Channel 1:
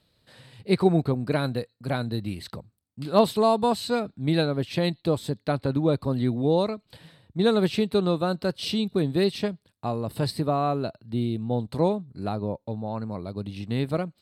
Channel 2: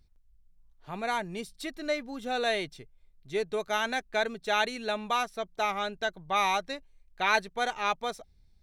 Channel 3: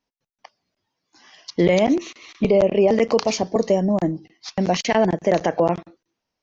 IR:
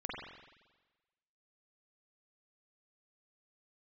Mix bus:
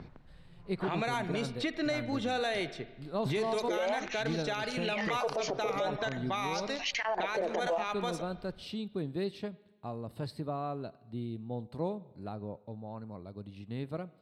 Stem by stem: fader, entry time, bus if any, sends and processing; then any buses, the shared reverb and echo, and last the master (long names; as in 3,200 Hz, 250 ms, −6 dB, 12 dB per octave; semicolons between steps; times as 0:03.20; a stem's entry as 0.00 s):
−12.0 dB, 0.00 s, bus A, send −20.5 dB, no processing
−1.5 dB, 0.00 s, no bus, send −13.5 dB, low-pass that shuts in the quiet parts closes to 1,500 Hz, open at −27.5 dBFS; multiband upward and downward compressor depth 100%
−0.5 dB, 2.10 s, bus A, no send, auto-filter high-pass sine 0.51 Hz 410–5,700 Hz
bus A: 0.0 dB, high-shelf EQ 4,500 Hz −8.5 dB; downward compressor, threshold −20 dBFS, peak gain reduction 10.5 dB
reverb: on, RT60 1.2 s, pre-delay 43 ms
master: brickwall limiter −23.5 dBFS, peak gain reduction 14.5 dB